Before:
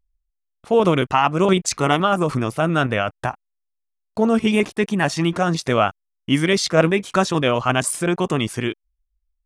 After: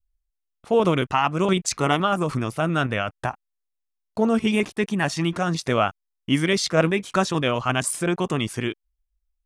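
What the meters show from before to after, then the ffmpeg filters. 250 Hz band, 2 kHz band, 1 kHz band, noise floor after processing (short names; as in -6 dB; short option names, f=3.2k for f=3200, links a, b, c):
-3.0 dB, -3.0 dB, -3.5 dB, -80 dBFS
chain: -af "adynamicequalizer=threshold=0.0398:dfrequency=540:dqfactor=0.7:tfrequency=540:tqfactor=0.7:attack=5:release=100:ratio=0.375:range=2:mode=cutabove:tftype=bell,volume=-2.5dB"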